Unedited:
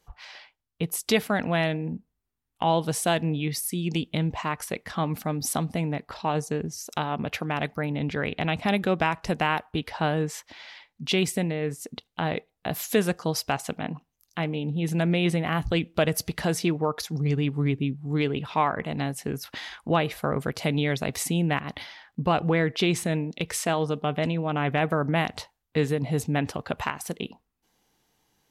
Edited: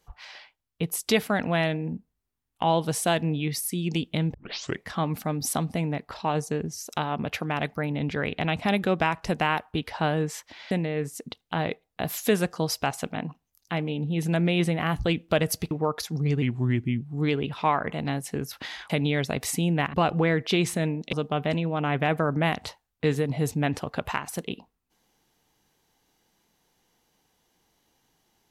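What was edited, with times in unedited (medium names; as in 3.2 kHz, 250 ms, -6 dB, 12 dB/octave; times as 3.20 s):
4.34 s: tape start 0.50 s
10.71–11.37 s: delete
16.37–16.71 s: delete
17.42–17.93 s: speed 87%
19.82–20.62 s: delete
21.66–22.23 s: delete
23.42–23.85 s: delete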